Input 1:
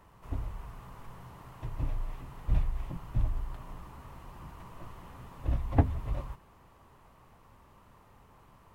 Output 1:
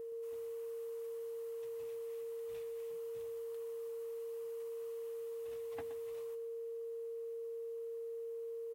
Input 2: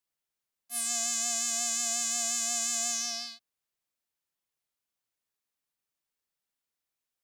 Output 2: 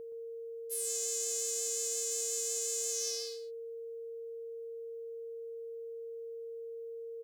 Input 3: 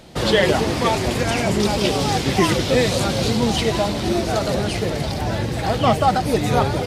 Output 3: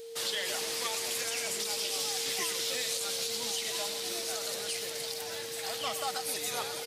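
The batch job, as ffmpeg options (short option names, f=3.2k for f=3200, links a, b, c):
-filter_complex "[0:a]highpass=52,aderivative,alimiter=limit=-23dB:level=0:latency=1:release=81,aeval=exprs='val(0)+0.00794*sin(2*PI*460*n/s)':c=same,asplit=2[a][b];[b]aecho=0:1:122:0.251[c];[a][c]amix=inputs=2:normalize=0"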